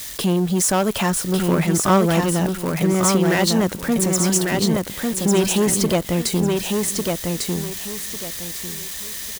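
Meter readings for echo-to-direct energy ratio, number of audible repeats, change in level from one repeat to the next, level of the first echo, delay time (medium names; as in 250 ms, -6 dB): -3.0 dB, 3, -11.5 dB, -3.5 dB, 1149 ms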